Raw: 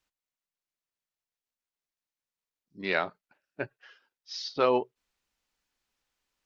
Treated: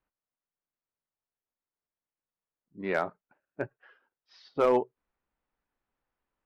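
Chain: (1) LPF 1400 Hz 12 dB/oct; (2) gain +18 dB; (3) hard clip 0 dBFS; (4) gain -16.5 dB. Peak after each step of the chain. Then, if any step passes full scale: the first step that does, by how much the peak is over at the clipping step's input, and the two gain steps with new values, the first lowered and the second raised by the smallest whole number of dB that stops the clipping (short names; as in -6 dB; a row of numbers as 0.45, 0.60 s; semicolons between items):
-12.0, +6.0, 0.0, -16.5 dBFS; step 2, 6.0 dB; step 2 +12 dB, step 4 -10.5 dB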